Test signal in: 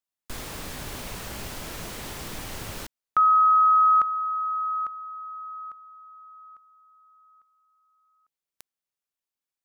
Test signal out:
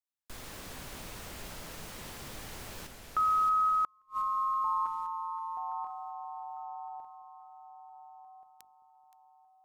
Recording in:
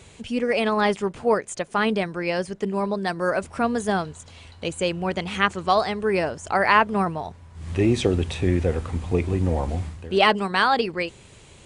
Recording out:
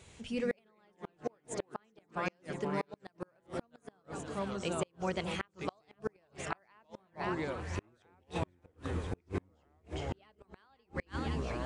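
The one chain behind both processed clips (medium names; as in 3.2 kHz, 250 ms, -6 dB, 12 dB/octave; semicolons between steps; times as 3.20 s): hum notches 50/100/150/200/250/300/350/400/450 Hz; ever faster or slower copies 82 ms, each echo -3 st, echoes 3, each echo -6 dB; two-band feedback delay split 830 Hz, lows 215 ms, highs 522 ms, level -14 dB; inverted gate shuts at -13 dBFS, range -38 dB; trim -9 dB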